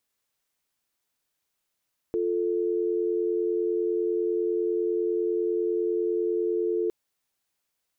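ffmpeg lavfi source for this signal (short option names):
-f lavfi -i "aevalsrc='0.0501*(sin(2*PI*350*t)+sin(2*PI*440*t))':d=4.76:s=44100"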